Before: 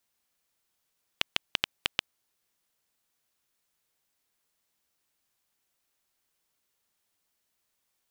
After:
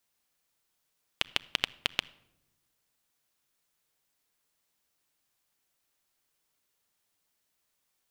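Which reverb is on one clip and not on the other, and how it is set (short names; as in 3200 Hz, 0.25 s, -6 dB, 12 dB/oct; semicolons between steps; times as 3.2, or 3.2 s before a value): shoebox room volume 2800 m³, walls furnished, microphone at 0.42 m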